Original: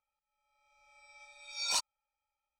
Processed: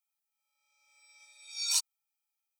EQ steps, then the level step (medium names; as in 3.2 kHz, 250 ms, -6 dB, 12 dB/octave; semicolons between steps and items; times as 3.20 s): pre-emphasis filter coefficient 0.97; +6.0 dB